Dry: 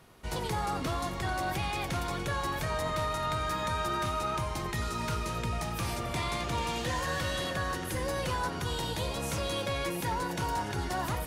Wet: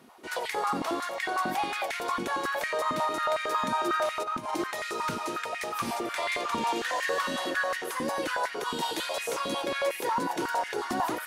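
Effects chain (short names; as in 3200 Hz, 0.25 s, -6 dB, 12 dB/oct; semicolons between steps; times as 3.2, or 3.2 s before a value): 4.22–4.64 negative-ratio compressor -35 dBFS, ratio -0.5; 8.81–9.23 tilt shelf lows -4 dB; stepped high-pass 11 Hz 240–2000 Hz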